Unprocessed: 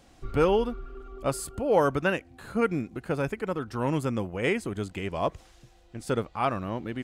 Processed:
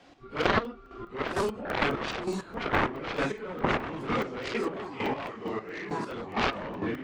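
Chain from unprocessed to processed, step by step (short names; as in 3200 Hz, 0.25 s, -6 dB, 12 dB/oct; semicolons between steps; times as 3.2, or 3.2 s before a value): phase scrambler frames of 0.1 s; three-band isolator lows -15 dB, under 170 Hz, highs -22 dB, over 5300 Hz; echoes that change speed 0.753 s, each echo -2 st, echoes 3; 4.54–6.16 low shelf 300 Hz -9.5 dB; added harmonics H 7 -7 dB, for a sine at -10 dBFS; chopper 2.2 Hz, depth 65%, duty 30%; crackling interface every 0.21 s, samples 64, zero, from 0.44; gain -1.5 dB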